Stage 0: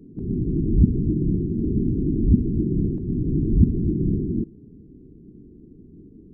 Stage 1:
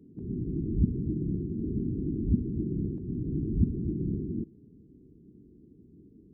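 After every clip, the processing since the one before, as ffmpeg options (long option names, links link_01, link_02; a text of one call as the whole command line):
ffmpeg -i in.wav -af "highpass=46,volume=-8.5dB" out.wav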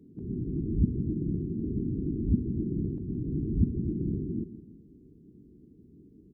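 ffmpeg -i in.wav -af "aecho=1:1:164|328|492|656:0.2|0.0858|0.0369|0.0159" out.wav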